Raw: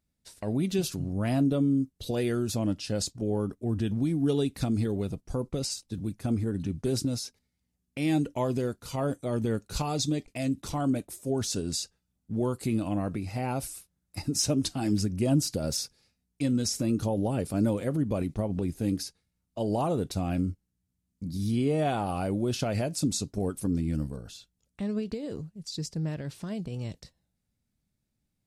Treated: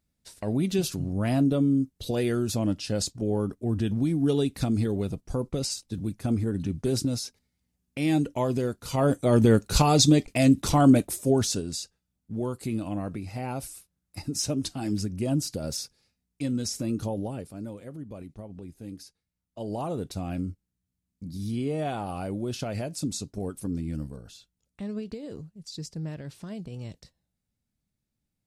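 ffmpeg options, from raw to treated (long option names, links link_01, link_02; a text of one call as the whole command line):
ffmpeg -i in.wav -af "volume=19dB,afade=type=in:start_time=8.76:duration=0.64:silence=0.398107,afade=type=out:start_time=11.1:duration=0.57:silence=0.251189,afade=type=out:start_time=17.1:duration=0.44:silence=0.316228,afade=type=in:start_time=18.95:duration=1.06:silence=0.354813" out.wav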